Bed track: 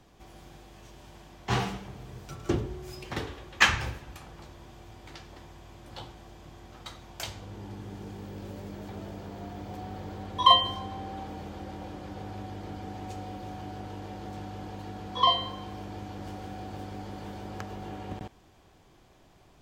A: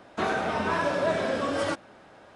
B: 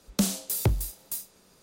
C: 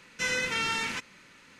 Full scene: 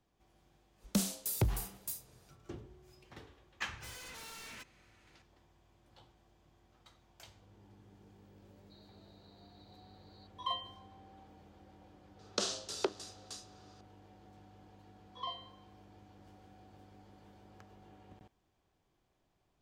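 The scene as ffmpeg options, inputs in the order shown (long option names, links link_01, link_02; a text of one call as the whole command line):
ffmpeg -i bed.wav -i cue0.wav -i cue1.wav -i cue2.wav -filter_complex "[2:a]asplit=2[link_01][link_02];[0:a]volume=-19dB[link_03];[3:a]aeval=exprs='0.0266*(abs(mod(val(0)/0.0266+3,4)-2)-1)':channel_layout=same[link_04];[1:a]asuperpass=centerf=4200:order=20:qfactor=4.3[link_05];[link_02]highpass=frequency=380:width=0.5412,highpass=frequency=380:width=1.3066,equalizer=frequency=390:width_type=q:width=4:gain=4,equalizer=frequency=570:width_type=q:width=4:gain=-3,equalizer=frequency=850:width_type=q:width=4:gain=-5,equalizer=frequency=1300:width_type=q:width=4:gain=3,equalizer=frequency=2200:width_type=q:width=4:gain=-10,lowpass=frequency=5900:width=0.5412,lowpass=frequency=5900:width=1.3066[link_06];[link_01]atrim=end=1.62,asetpts=PTS-STARTPTS,volume=-7dB,afade=type=in:duration=0.1,afade=type=out:start_time=1.52:duration=0.1,adelay=760[link_07];[link_04]atrim=end=1.59,asetpts=PTS-STARTPTS,volume=-13dB,afade=type=in:duration=0.004:curve=hsin,afade=type=out:start_time=1.586:duration=0.004:curve=hsin,adelay=3630[link_08];[link_05]atrim=end=2.35,asetpts=PTS-STARTPTS,volume=-16.5dB,afade=type=in:duration=0.004:curve=hsin,afade=type=out:start_time=2.346:duration=0.004:curve=hsin,adelay=8520[link_09];[link_06]atrim=end=1.62,asetpts=PTS-STARTPTS,volume=-0.5dB,afade=type=in:duration=0.004:curve=hsin,afade=type=out:start_time=1.616:duration=0.004:curve=hsin,adelay=12190[link_10];[link_03][link_07][link_08][link_09][link_10]amix=inputs=5:normalize=0" out.wav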